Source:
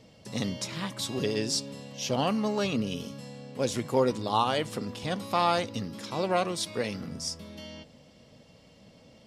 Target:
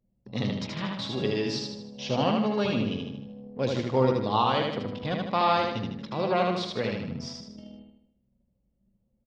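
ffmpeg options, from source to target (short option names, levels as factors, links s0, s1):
-af "anlmdn=1,lowpass=f=4500:w=0.5412,lowpass=f=4500:w=1.3066,adynamicequalizer=threshold=0.00398:dfrequency=130:dqfactor=3.6:tfrequency=130:tqfactor=3.6:attack=5:release=100:ratio=0.375:range=2:mode=boostabove:tftype=bell,aecho=1:1:77|154|231|308|385|462:0.708|0.333|0.156|0.0735|0.0345|0.0162"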